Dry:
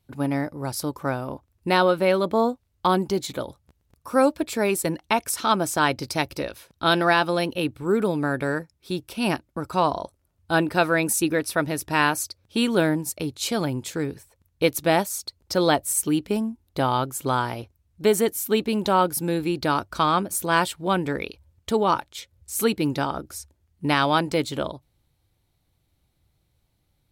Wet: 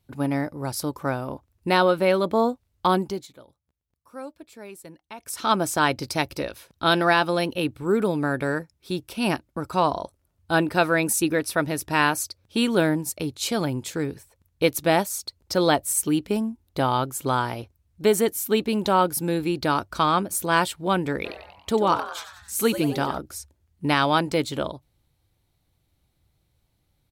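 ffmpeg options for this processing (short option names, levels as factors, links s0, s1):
-filter_complex "[0:a]asplit=3[s0][s1][s2];[s0]afade=t=out:st=21.24:d=0.02[s3];[s1]asplit=7[s4][s5][s6][s7][s8][s9][s10];[s5]adelay=93,afreqshift=110,volume=0.251[s11];[s6]adelay=186,afreqshift=220,volume=0.141[s12];[s7]adelay=279,afreqshift=330,volume=0.0785[s13];[s8]adelay=372,afreqshift=440,volume=0.0442[s14];[s9]adelay=465,afreqshift=550,volume=0.0248[s15];[s10]adelay=558,afreqshift=660,volume=0.0138[s16];[s4][s11][s12][s13][s14][s15][s16]amix=inputs=7:normalize=0,afade=t=in:st=21.24:d=0.02,afade=t=out:st=23.17:d=0.02[s17];[s2]afade=t=in:st=23.17:d=0.02[s18];[s3][s17][s18]amix=inputs=3:normalize=0,asplit=3[s19][s20][s21];[s19]atrim=end=3.3,asetpts=PTS-STARTPTS,afade=t=out:st=2.95:d=0.35:silence=0.11885[s22];[s20]atrim=start=3.3:end=5.17,asetpts=PTS-STARTPTS,volume=0.119[s23];[s21]atrim=start=5.17,asetpts=PTS-STARTPTS,afade=t=in:d=0.35:silence=0.11885[s24];[s22][s23][s24]concat=n=3:v=0:a=1"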